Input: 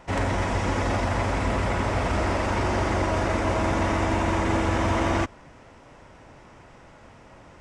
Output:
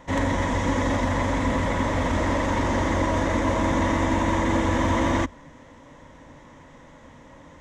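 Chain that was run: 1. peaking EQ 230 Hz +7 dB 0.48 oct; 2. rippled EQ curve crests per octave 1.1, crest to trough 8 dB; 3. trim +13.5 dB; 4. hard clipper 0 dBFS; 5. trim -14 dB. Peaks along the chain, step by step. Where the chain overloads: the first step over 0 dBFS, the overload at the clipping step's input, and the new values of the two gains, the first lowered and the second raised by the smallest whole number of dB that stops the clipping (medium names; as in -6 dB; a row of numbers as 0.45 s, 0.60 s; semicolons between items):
-11.5 dBFS, -10.0 dBFS, +3.5 dBFS, 0.0 dBFS, -14.0 dBFS; step 3, 3.5 dB; step 3 +9.5 dB, step 5 -10 dB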